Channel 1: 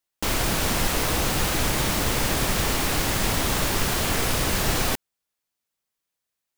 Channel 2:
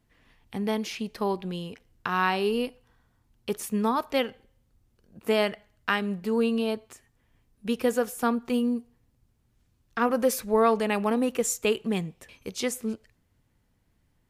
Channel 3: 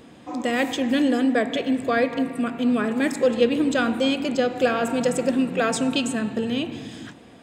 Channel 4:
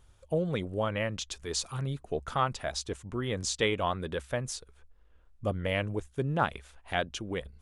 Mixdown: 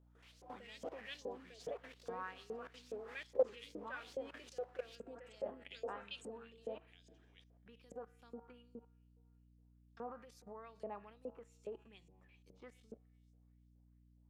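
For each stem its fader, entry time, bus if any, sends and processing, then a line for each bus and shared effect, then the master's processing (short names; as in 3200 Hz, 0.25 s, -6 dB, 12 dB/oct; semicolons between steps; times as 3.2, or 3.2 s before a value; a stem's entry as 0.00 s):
-15.5 dB, 0.00 s, bus A, no send, HPF 240 Hz 12 dB/oct
+1.0 dB, 0.00 s, bus A, no send, tilt shelf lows +8 dB, about 840 Hz
-9.0 dB, 0.15 s, no bus, no send, bell 420 Hz +14 dB 0.6 oct; photocell phaser 1.4 Hz
-9.5 dB, 0.00 s, bus A, no send, high shelf 4100 Hz +10.5 dB; three-band squash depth 70%
bus A: 0.0 dB, resonator 93 Hz, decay 1.8 s, harmonics all, mix 60%; limiter -21 dBFS, peak gain reduction 7.5 dB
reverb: off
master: level quantiser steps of 18 dB; LFO band-pass saw up 2.4 Hz 510–6600 Hz; hum 60 Hz, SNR 19 dB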